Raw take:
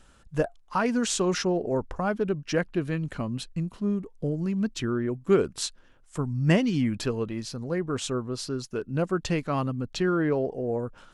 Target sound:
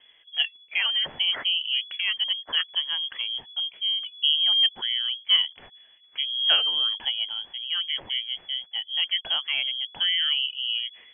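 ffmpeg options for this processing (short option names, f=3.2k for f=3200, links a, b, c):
-filter_complex "[0:a]lowpass=f=2.9k:t=q:w=0.5098,lowpass=f=2.9k:t=q:w=0.6013,lowpass=f=2.9k:t=q:w=0.9,lowpass=f=2.9k:t=q:w=2.563,afreqshift=-3400,asettb=1/sr,asplit=3[a][b][c];[a]atrim=end=4.024[d];[b]atrim=start=4.02:end=4.69,asetpts=PTS-STARTPTS,afade=t=in:d=0.004:c=qsin,afade=t=out:st=0.666:d=0.004:c=qsin,acontrast=54[e];[c]atrim=start=4.686[f];[d][e]acrossfade=d=0.004:c1=hsin:c2=qsin[g];[g][f]acrossfade=d=0.004:c1=qsin:c2=hsin"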